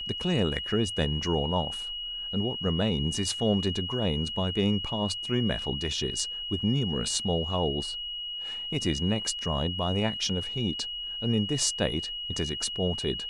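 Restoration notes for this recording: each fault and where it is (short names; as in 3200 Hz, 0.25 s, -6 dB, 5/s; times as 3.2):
tone 2900 Hz -33 dBFS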